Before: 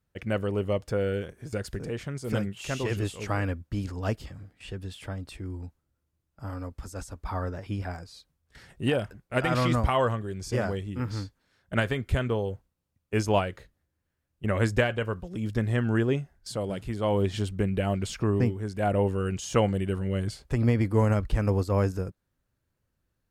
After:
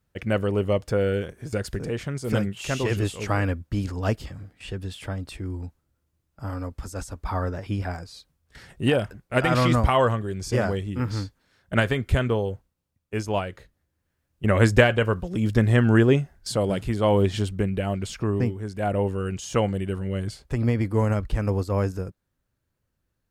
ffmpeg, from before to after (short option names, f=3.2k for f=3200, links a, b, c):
-af "volume=15dB,afade=t=out:st=12.23:d=1.04:silence=0.421697,afade=t=in:st=13.27:d=1.5:silence=0.298538,afade=t=out:st=16.73:d=1.08:silence=0.446684"